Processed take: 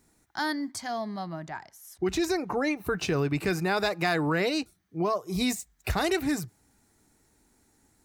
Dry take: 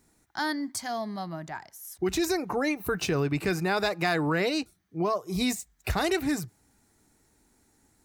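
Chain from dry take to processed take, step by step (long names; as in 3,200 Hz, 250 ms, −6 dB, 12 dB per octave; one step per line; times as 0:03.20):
0:00.71–0:03.09: high-shelf EQ 9,700 Hz −10.5 dB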